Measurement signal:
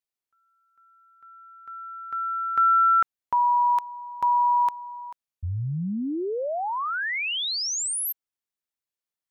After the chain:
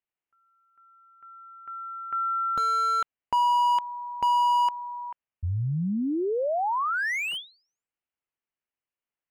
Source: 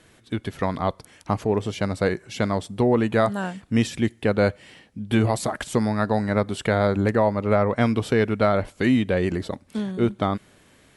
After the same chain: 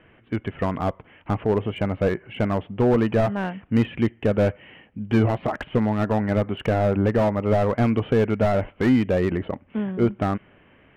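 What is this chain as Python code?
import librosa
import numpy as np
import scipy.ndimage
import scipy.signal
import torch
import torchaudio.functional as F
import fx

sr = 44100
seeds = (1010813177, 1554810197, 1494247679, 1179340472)

y = scipy.signal.sosfilt(scipy.signal.cheby1(6, 1.0, 3000.0, 'lowpass', fs=sr, output='sos'), x)
y = fx.slew_limit(y, sr, full_power_hz=71.0)
y = y * librosa.db_to_amplitude(2.0)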